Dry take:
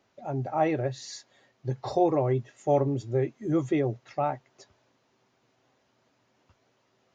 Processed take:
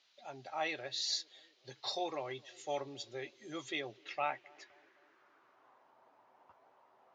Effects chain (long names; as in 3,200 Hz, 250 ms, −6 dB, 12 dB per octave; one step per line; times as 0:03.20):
band-pass filter sweep 3,900 Hz → 890 Hz, 0:03.70–0:05.95
feedback echo with a band-pass in the loop 260 ms, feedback 75%, band-pass 340 Hz, level −23 dB
level +10 dB